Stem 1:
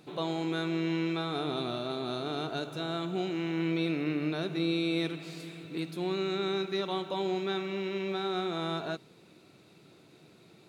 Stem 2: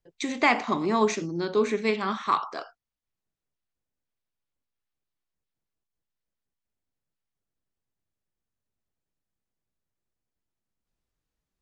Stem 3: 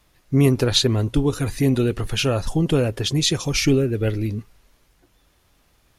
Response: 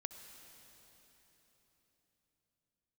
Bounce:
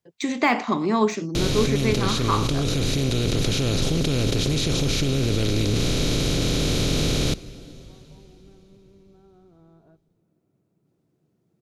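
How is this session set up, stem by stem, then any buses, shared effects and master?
-16.5 dB, 1.00 s, send -12 dB, Bessel low-pass 730 Hz, order 2; compressor 2.5:1, threshold -43 dBFS, peak gain reduction 11 dB
+1.0 dB, 0.00 s, no send, de-esser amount 75%; HPF 150 Hz
-19.0 dB, 1.35 s, send -6 dB, per-bin compression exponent 0.2; fast leveller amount 100%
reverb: on, RT60 4.1 s, pre-delay 58 ms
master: tone controls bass +7 dB, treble +1 dB; vocal rider within 3 dB 2 s

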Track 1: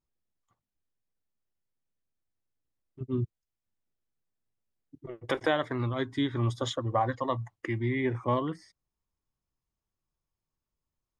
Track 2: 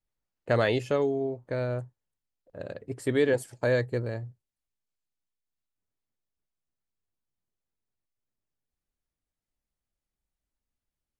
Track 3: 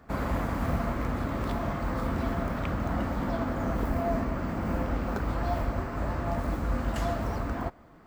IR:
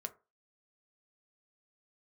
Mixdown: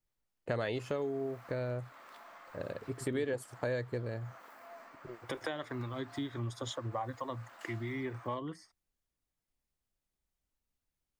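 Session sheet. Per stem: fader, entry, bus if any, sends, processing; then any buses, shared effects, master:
-3.5 dB, 0.00 s, no send, gate -48 dBFS, range -8 dB; high shelf 4900 Hz +9.5 dB; harmonic tremolo 4.5 Hz, depth 50%, crossover 430 Hz
0.0 dB, 0.00 s, no send, dry
-14.0 dB, 0.65 s, no send, HPF 1000 Hz 12 dB/oct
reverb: off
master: compressor 2.5:1, threshold -36 dBFS, peak gain reduction 11.5 dB

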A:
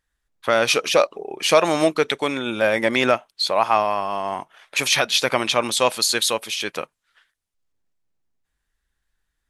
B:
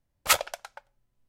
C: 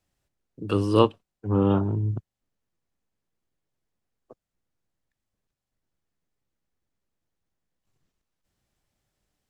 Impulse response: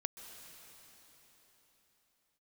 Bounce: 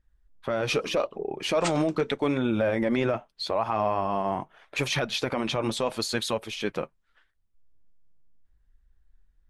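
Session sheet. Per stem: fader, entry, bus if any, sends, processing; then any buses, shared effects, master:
+0.5 dB, 0.00 s, no send, tilt -3.5 dB/oct
-1.5 dB, 1.35 s, no send, steep low-pass 8800 Hz 96 dB/oct
-13.5 dB, 0.00 s, no send, weighting filter A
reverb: off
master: flange 0.8 Hz, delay 0.4 ms, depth 6.1 ms, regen -55%; limiter -16 dBFS, peak gain reduction 11 dB

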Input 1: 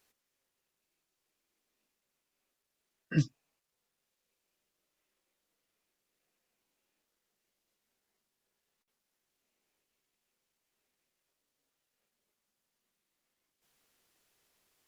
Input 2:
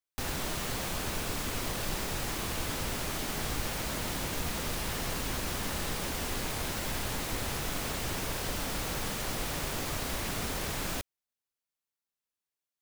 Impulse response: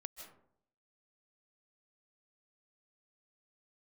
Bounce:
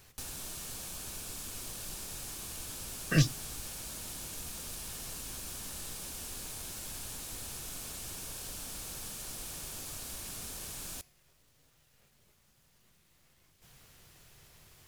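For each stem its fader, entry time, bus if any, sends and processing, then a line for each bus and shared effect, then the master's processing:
-1.0 dB, 0.00 s, no send, resonant low shelf 180 Hz +9.5 dB, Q 1.5; spectral compressor 2:1
-2.5 dB, 0.00 s, no send, bell 9700 Hz +15 dB 2.2 oct; notch 2000 Hz, Q 10; auto duck -9 dB, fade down 0.25 s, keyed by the first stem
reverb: off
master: low shelf 230 Hz +4.5 dB; resonator 360 Hz, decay 0.54 s, mix 40%

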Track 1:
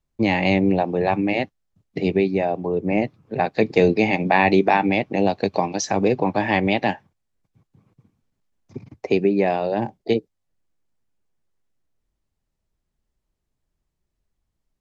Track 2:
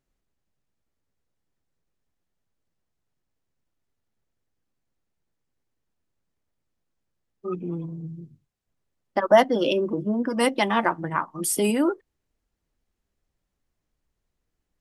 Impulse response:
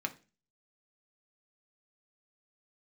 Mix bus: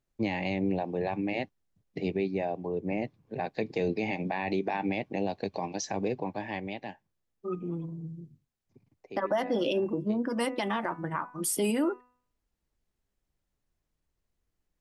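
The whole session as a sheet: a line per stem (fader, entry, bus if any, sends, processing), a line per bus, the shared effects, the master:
-9.5 dB, 0.00 s, no send, notch 1300 Hz, Q 6.2; auto duck -15 dB, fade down 1.55 s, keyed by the second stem
-4.0 dB, 0.00 s, no send, de-hum 247.8 Hz, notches 11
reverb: off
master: limiter -19.5 dBFS, peak gain reduction 10.5 dB

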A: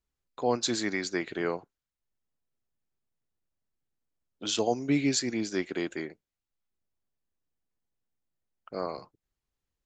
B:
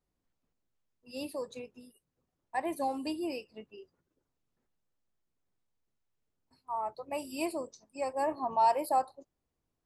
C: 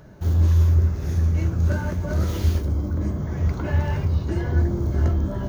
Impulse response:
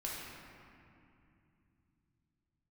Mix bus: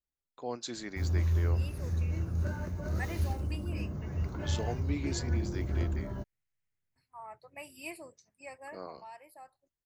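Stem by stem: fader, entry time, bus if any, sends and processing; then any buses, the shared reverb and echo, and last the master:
-10.5 dB, 0.00 s, no send, dry
8.4 s -5 dB -> 9.16 s -17.5 dB, 0.45 s, no send, ten-band EQ 125 Hz +6 dB, 250 Hz -9 dB, 500 Hz -5 dB, 1000 Hz -8 dB, 2000 Hz +11 dB, 4000 Hz -6 dB
-11.0 dB, 0.75 s, no send, notch 3300 Hz, Q 9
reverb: off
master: dry

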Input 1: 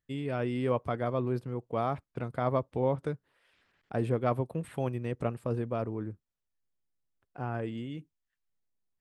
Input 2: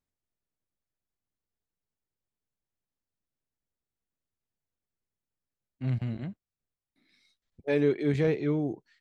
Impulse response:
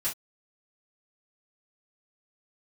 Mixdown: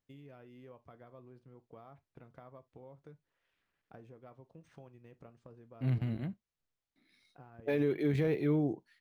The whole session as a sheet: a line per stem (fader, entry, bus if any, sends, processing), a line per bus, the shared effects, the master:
-13.5 dB, 0.00 s, send -14.5 dB, compressor 5:1, threshold -39 dBFS, peak gain reduction 14.5 dB
-2.0 dB, 0.00 s, send -22.5 dB, limiter -20 dBFS, peak gain reduction 6 dB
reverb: on, pre-delay 3 ms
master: decimation joined by straight lines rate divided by 3×

